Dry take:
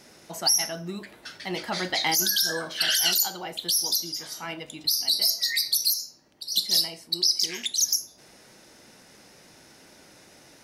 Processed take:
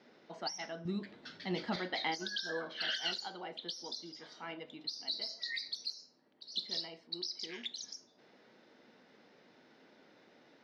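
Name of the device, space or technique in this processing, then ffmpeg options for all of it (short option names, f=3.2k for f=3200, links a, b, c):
kitchen radio: -filter_complex "[0:a]highpass=190,equalizer=f=240:t=q:w=4:g=5,equalizer=f=450:t=q:w=4:g=4,equalizer=f=2.6k:t=q:w=4:g=-4,lowpass=f=3.9k:w=0.5412,lowpass=f=3.9k:w=1.3066,asettb=1/sr,asplit=3[a][b][c];[a]atrim=end=0.854[d];[b]atrim=start=0.85:end=1.76,asetpts=PTS-STARTPTS,afade=t=in:d=0.004:c=qsin,afade=t=out:st=0.906:d=0.004:c=qsin,bass=f=250:g=13,treble=f=4k:g=11[e];[c]atrim=start=1.756[f];[d][e]acrossfade=d=0.004:c1=hsin:c2=qsin[g];[g][f]acrossfade=d=0.004:c1=qsin:c2=hsin,volume=-9dB"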